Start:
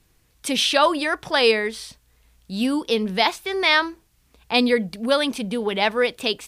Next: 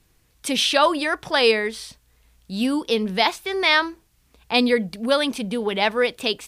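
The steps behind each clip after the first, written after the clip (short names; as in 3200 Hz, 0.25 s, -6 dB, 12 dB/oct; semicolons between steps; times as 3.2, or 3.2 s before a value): nothing audible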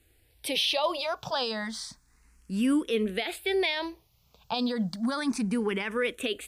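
limiter -16.5 dBFS, peak gain reduction 11.5 dB; endless phaser +0.31 Hz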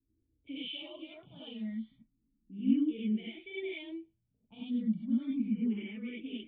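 low-pass opened by the level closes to 450 Hz, open at -28.5 dBFS; vocal tract filter i; non-linear reverb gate 0.12 s rising, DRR -8 dB; gain -8 dB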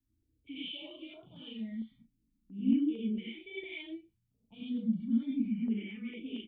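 doubler 35 ms -7.5 dB; stepped notch 4.4 Hz 460–1900 Hz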